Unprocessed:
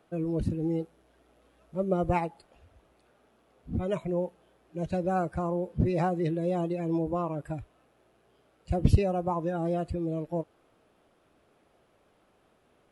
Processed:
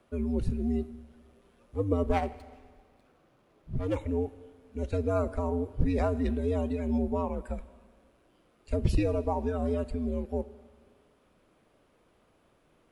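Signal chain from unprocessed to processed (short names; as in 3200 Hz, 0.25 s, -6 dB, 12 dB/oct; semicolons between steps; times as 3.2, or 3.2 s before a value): Schroeder reverb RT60 1.7 s, combs from 33 ms, DRR 16 dB; frequency shift -94 Hz; 2.03–3.96 running maximum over 5 samples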